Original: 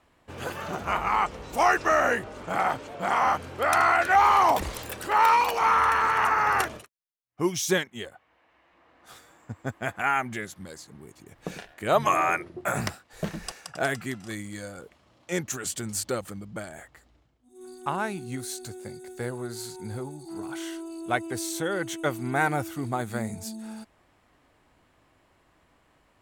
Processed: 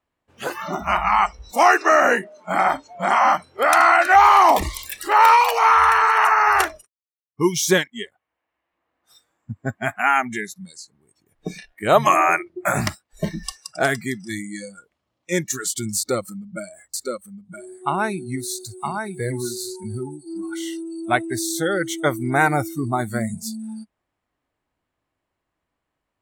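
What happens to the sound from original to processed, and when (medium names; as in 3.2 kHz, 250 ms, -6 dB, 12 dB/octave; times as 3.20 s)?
1.51–2.49 s: steep high-pass 160 Hz
15.97–19.84 s: delay 965 ms -4.5 dB
whole clip: spectral noise reduction 23 dB; trim +7 dB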